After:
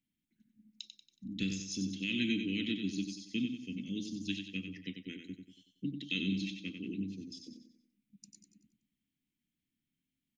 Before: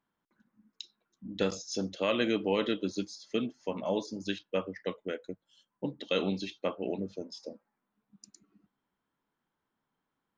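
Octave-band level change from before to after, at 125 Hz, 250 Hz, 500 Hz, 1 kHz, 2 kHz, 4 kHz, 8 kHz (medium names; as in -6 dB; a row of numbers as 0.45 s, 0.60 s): 0.0 dB, -1.0 dB, -18.5 dB, under -30 dB, -1.5 dB, -1.0 dB, no reading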